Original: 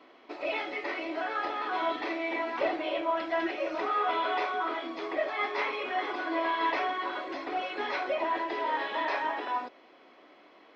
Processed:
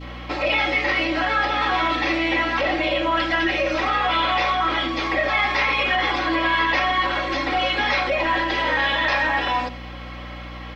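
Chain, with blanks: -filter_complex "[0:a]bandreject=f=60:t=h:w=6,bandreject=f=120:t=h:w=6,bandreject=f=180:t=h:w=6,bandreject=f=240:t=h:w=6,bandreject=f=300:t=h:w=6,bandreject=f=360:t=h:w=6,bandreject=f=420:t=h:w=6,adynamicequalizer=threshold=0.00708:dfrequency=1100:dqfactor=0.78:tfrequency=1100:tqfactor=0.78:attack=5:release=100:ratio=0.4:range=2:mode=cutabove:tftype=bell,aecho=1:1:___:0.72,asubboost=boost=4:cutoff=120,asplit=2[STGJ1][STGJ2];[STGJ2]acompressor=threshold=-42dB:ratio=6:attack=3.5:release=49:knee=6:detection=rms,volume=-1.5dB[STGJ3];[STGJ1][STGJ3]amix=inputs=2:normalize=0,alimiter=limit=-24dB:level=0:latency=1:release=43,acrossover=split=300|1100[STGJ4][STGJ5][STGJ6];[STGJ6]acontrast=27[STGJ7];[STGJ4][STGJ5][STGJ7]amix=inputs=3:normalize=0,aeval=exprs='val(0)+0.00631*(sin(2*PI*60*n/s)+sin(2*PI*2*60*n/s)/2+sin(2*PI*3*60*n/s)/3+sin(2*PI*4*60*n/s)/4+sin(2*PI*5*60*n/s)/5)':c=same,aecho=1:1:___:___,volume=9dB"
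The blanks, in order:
3.7, 88, 0.168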